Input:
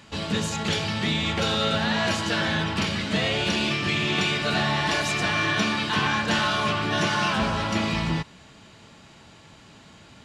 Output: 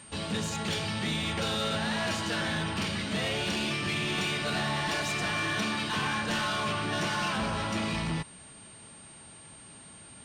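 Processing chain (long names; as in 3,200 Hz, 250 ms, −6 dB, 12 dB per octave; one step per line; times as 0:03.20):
soft clipping −21.5 dBFS, distortion −14 dB
steady tone 8,700 Hz −46 dBFS
level −3.5 dB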